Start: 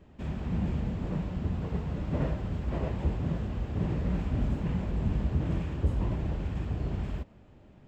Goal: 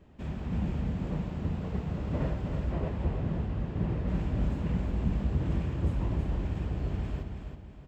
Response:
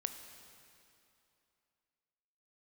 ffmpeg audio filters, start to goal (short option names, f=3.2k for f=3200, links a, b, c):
-filter_complex "[0:a]asettb=1/sr,asplit=3[a][b][c];[a]atrim=end=2.724[d];[b]atrim=start=2.72:end=4.08,asetpts=PTS-STARTPTS,afade=t=in:d=0.004:c=qsin,afade=t=out:st=1.356:d=0.004:c=qsin,lowpass=f=3.6k:p=1[e];[c]atrim=start=4.076[f];[d][e]acrossfade=d=0.004:c1=hsin:c2=qsin[g];[g][f]acrossfade=d=0.004:c1=qsin:c2=hsin,asplit=2[h][i];[i]aecho=0:1:325|650|975|1300:0.501|0.18|0.065|0.0234[j];[h][j]amix=inputs=2:normalize=0,volume=-1.5dB"